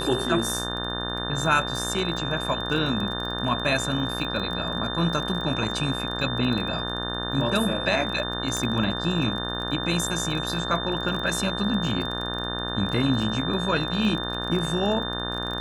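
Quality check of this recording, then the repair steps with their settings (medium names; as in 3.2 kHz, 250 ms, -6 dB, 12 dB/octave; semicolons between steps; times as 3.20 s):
buzz 60 Hz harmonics 30 -32 dBFS
crackle 22 per s -30 dBFS
whine 3.6 kHz -31 dBFS
8.57 s: pop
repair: de-click; de-hum 60 Hz, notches 30; band-stop 3.6 kHz, Q 30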